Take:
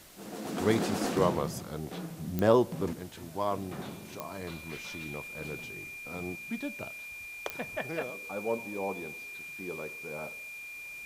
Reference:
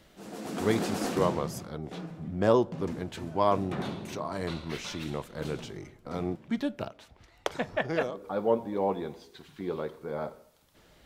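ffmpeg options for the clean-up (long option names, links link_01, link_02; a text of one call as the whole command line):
ffmpeg -i in.wav -af "adeclick=threshold=4,bandreject=frequency=2400:width=30,afwtdn=0.002,asetnsamples=nb_out_samples=441:pad=0,asendcmd='2.93 volume volume 6.5dB',volume=0dB" out.wav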